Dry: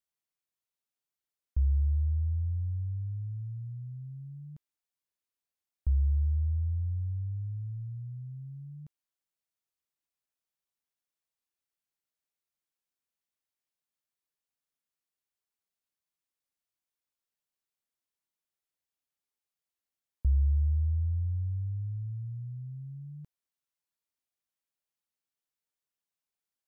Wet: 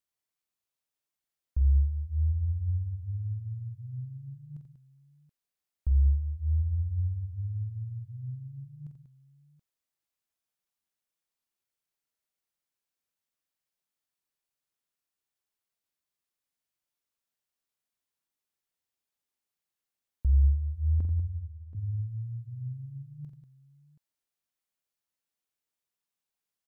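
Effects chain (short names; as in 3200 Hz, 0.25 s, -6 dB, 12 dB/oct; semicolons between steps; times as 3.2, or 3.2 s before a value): 21–21.75 gate with hold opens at -26 dBFS; tapped delay 46/87/191/728 ms -8/-8.5/-10/-17 dB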